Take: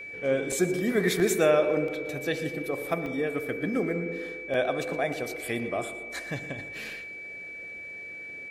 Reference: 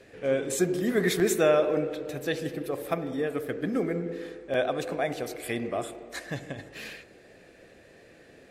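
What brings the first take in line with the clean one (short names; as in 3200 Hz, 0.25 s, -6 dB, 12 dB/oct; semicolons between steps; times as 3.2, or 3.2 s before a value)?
notch 2300 Hz, Q 30; interpolate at 0.52/1.88/3.06, 2.7 ms; inverse comb 0.118 s -16 dB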